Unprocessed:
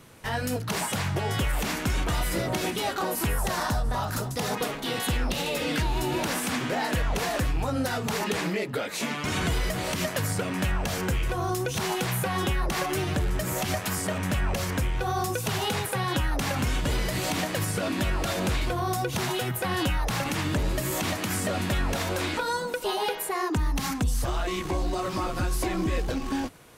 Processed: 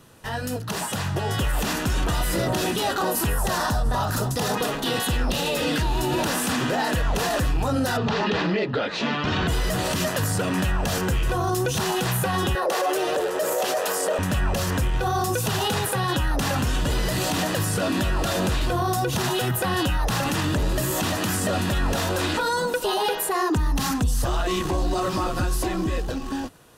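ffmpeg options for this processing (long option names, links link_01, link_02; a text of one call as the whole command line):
ffmpeg -i in.wav -filter_complex "[0:a]asplit=3[link_01][link_02][link_03];[link_01]afade=type=out:start_time=7.96:duration=0.02[link_04];[link_02]lowpass=frequency=4500:width=0.5412,lowpass=frequency=4500:width=1.3066,afade=type=in:start_time=7.96:duration=0.02,afade=type=out:start_time=9.47:duration=0.02[link_05];[link_03]afade=type=in:start_time=9.47:duration=0.02[link_06];[link_04][link_05][link_06]amix=inputs=3:normalize=0,asettb=1/sr,asplit=3[link_07][link_08][link_09];[link_07]atrim=end=12.554[link_10];[link_08]atrim=start=12.55:end=14.19,asetpts=PTS-STARTPTS,afade=type=in:duration=0.004:curve=qsin,afade=type=out:start_time=1.636:duration=0.004:curve=qsin,highpass=frequency=500:width_type=q:width=4.9[link_11];[link_09]atrim=start=14.186[link_12];[link_10][link_11]acrossfade=duration=0.004:curve1=hsin:curve2=qsin[link_13];[link_13][link_12]acrossfade=duration=0.004:curve1=qsin:curve2=hsin,bandreject=frequency=2200:width=6.2,dynaudnorm=framelen=150:gausssize=21:maxgain=7dB,alimiter=limit=-16dB:level=0:latency=1:release=14" out.wav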